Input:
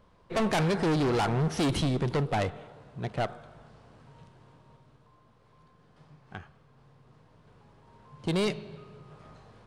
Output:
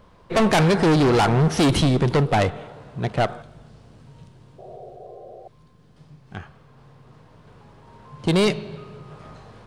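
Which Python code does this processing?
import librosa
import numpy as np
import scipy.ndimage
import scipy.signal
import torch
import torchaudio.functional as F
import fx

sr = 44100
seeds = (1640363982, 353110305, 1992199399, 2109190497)

y = fx.peak_eq(x, sr, hz=1100.0, db=-9.0, octaves=2.8, at=(3.42, 6.37))
y = fx.spec_paint(y, sr, seeds[0], shape='noise', start_s=4.58, length_s=0.9, low_hz=350.0, high_hz=780.0, level_db=-50.0)
y = y * 10.0 ** (9.0 / 20.0)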